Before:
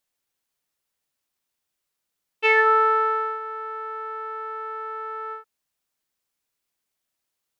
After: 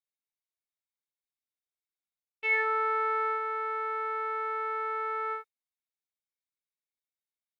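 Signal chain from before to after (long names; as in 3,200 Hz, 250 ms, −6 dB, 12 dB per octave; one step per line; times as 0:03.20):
hollow resonant body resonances 2,200/3,700 Hz, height 12 dB, ringing for 20 ms
noise gate with hold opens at −24 dBFS
reversed playback
downward compressor 6 to 1, threshold −26 dBFS, peak gain reduction 18 dB
reversed playback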